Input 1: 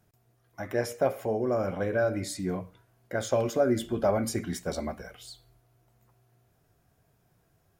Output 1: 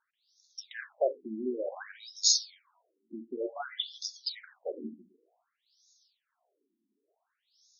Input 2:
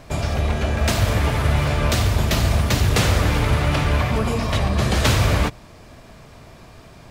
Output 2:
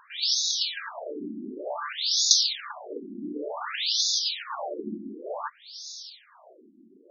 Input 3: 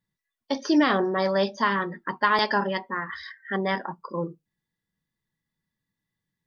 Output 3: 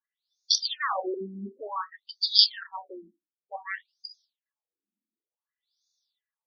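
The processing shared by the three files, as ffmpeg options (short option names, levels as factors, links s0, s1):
-af "aexciter=amount=11.5:drive=5.9:freq=3700,acompressor=threshold=0.282:ratio=6,afftfilt=real='re*between(b*sr/1024,250*pow(4900/250,0.5+0.5*sin(2*PI*0.55*pts/sr))/1.41,250*pow(4900/250,0.5+0.5*sin(2*PI*0.55*pts/sr))*1.41)':imag='im*between(b*sr/1024,250*pow(4900/250,0.5+0.5*sin(2*PI*0.55*pts/sr))/1.41,250*pow(4900/250,0.5+0.5*sin(2*PI*0.55*pts/sr))*1.41)':win_size=1024:overlap=0.75,volume=0.841"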